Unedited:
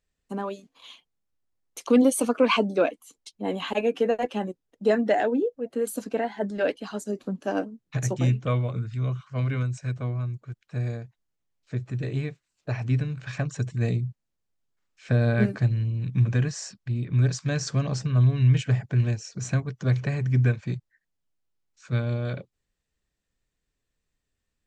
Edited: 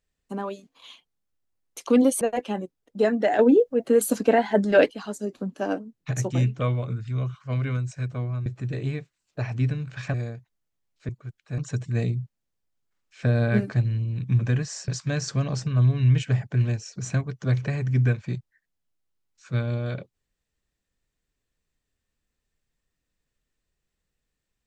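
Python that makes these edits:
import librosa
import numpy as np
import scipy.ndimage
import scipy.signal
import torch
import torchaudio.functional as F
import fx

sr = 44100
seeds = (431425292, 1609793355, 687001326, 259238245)

y = fx.edit(x, sr, fx.cut(start_s=2.21, length_s=1.86),
    fx.clip_gain(start_s=5.25, length_s=1.52, db=8.0),
    fx.swap(start_s=10.32, length_s=0.49, other_s=11.76, other_length_s=1.68),
    fx.cut(start_s=16.74, length_s=0.53), tone=tone)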